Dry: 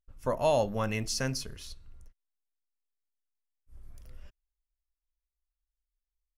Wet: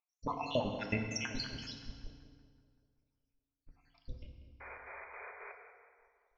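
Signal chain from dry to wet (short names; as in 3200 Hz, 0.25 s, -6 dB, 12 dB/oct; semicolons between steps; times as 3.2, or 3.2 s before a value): random spectral dropouts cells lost 75%; elliptic low-pass 5600 Hz, stop band 40 dB; bell 610 Hz -7.5 dB 0.33 oct; compressor 10:1, threshold -44 dBFS, peak gain reduction 15 dB; small resonant body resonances 240/610/3000 Hz, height 7 dB, ringing for 20 ms; painted sound noise, 4.6–5.52, 370–2500 Hz -59 dBFS; chopper 3.7 Hz, depth 60%, duty 65%; on a send: tape echo 0.19 s, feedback 62%, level -11 dB, low-pass 2200 Hz; on the sum: FDN reverb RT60 1.6 s, low-frequency decay 1.3×, high-frequency decay 0.9×, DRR 3.5 dB; gain +9.5 dB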